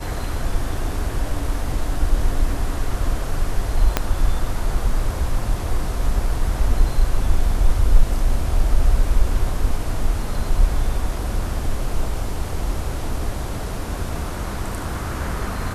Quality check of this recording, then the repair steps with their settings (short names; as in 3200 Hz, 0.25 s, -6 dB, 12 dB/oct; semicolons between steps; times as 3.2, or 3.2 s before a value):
3.97 pop -2 dBFS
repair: de-click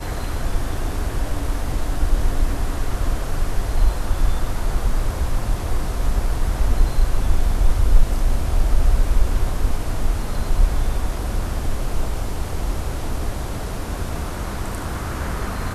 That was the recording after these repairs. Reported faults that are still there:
3.97 pop